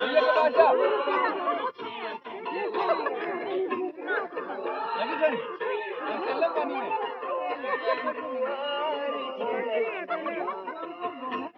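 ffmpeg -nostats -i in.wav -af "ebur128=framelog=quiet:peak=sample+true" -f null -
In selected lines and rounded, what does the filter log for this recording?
Integrated loudness:
  I:         -28.4 LUFS
  Threshold: -38.4 LUFS
Loudness range:
  LRA:         4.4 LU
  Threshold: -49.3 LUFS
  LRA low:   -30.8 LUFS
  LRA high:  -26.3 LUFS
Sample peak:
  Peak:       -7.1 dBFS
True peak:
  Peak:       -7.1 dBFS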